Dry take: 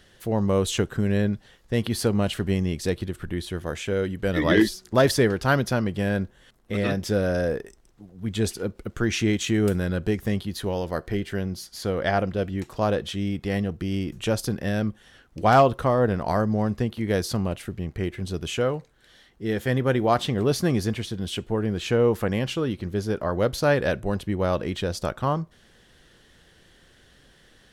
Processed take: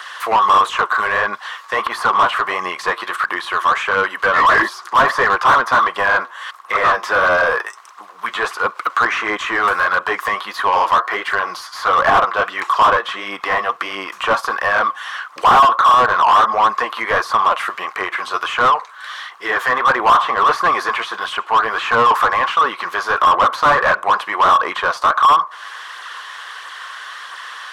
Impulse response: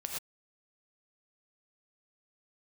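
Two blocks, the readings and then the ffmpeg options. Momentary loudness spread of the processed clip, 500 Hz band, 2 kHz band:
15 LU, +2.0 dB, +16.0 dB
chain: -filter_complex "[0:a]highpass=f=1.1k:t=q:w=8.1,acrossover=split=1500[a][b];[b]acompressor=threshold=-43dB:ratio=5[c];[a][c]amix=inputs=2:normalize=0,flanger=delay=0.1:depth=8.7:regen=38:speed=1.5:shape=sinusoidal,asplit=2[d][e];[e]highpass=f=720:p=1,volume=34dB,asoftclip=type=tanh:threshold=-3dB[f];[d][f]amix=inputs=2:normalize=0,lowpass=f=4.1k:p=1,volume=-6dB,acrossover=split=2600[g][h];[h]acompressor=threshold=-32dB:ratio=4:attack=1:release=60[i];[g][i]amix=inputs=2:normalize=0"

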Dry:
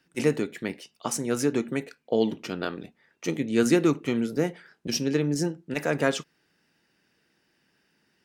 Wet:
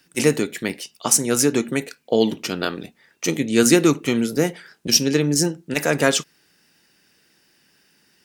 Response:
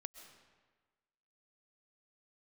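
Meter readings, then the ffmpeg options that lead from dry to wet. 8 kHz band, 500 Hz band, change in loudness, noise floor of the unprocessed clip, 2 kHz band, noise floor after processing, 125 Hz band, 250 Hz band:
+14.5 dB, +5.5 dB, +7.5 dB, -71 dBFS, +8.0 dB, -62 dBFS, +5.5 dB, +5.5 dB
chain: -af "highshelf=f=4k:g=12,volume=5.5dB"

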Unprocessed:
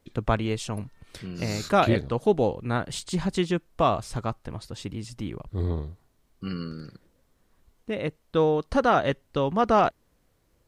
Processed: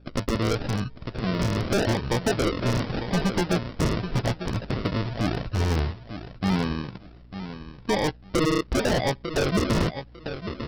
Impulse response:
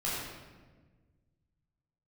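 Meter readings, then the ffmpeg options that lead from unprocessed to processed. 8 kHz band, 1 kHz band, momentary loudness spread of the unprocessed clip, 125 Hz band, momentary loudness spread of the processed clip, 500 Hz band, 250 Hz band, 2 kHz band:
+4.5 dB, -4.5 dB, 16 LU, +4.5 dB, 12 LU, -1.5 dB, +3.0 dB, +3.5 dB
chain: -filter_complex "[0:a]asplit=2[a][b];[b]adelay=16,volume=-10.5dB[c];[a][c]amix=inputs=2:normalize=0,aresample=11025,acrusher=samples=11:mix=1:aa=0.000001:lfo=1:lforange=6.6:lforate=0.85,aresample=44100,acompressor=threshold=-25dB:ratio=16,aeval=exprs='val(0)+0.00112*(sin(2*PI*60*n/s)+sin(2*PI*2*60*n/s)/2+sin(2*PI*3*60*n/s)/3+sin(2*PI*4*60*n/s)/4+sin(2*PI*5*60*n/s)/5)':c=same,aecho=1:1:899|1798:0.251|0.0477,aeval=exprs='0.0562*(abs(mod(val(0)/0.0562+3,4)-2)-1)':c=same,volume=8.5dB"

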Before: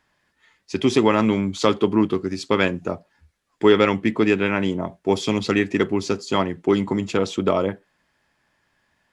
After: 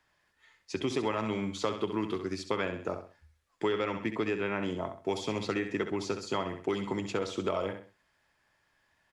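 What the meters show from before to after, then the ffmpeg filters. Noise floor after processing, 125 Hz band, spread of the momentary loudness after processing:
-74 dBFS, -12.5 dB, 4 LU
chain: -filter_complex "[0:a]equalizer=f=220:t=o:w=1.1:g=-6.5,aecho=1:1:65|130|195:0.335|0.104|0.0322,acrossover=split=96|1700[a][b][c];[a]acompressor=threshold=-50dB:ratio=4[d];[b]acompressor=threshold=-24dB:ratio=4[e];[c]acompressor=threshold=-37dB:ratio=4[f];[d][e][f]amix=inputs=3:normalize=0,volume=-4.5dB"

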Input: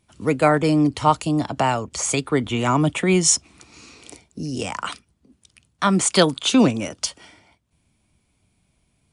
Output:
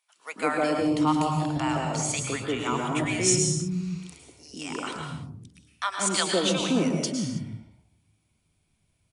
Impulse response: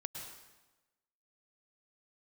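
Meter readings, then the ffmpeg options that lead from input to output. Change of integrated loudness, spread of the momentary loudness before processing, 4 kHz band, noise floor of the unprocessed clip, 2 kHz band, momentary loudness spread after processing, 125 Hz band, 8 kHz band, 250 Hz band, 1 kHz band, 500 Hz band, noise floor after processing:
-6.0 dB, 11 LU, -4.5 dB, -68 dBFS, -4.5 dB, 15 LU, -5.5 dB, -4.5 dB, -6.0 dB, -6.5 dB, -6.5 dB, -72 dBFS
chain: -filter_complex "[0:a]bandreject=f=60:t=h:w=6,bandreject=f=120:t=h:w=6,acrossover=split=210|750[a][b][c];[b]adelay=160[d];[a]adelay=580[e];[e][d][c]amix=inputs=3:normalize=0[f];[1:a]atrim=start_sample=2205,afade=t=out:st=0.38:d=0.01,atrim=end_sample=17199[g];[f][g]afir=irnorm=-1:irlink=0,volume=-3dB"

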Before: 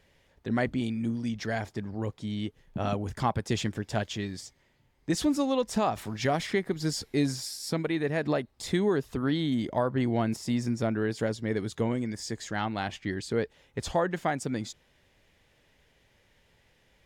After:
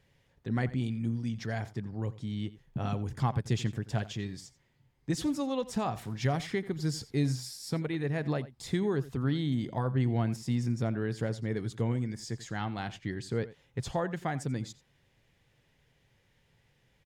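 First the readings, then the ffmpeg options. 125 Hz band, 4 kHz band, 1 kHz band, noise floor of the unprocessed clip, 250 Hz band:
+2.5 dB, -5.5 dB, -5.5 dB, -66 dBFS, -3.5 dB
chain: -filter_complex "[0:a]equalizer=f=130:t=o:w=0.69:g=10.5,bandreject=f=610:w=15,asplit=2[a][b];[b]adelay=87.46,volume=-17dB,highshelf=f=4k:g=-1.97[c];[a][c]amix=inputs=2:normalize=0,volume=-5.5dB"

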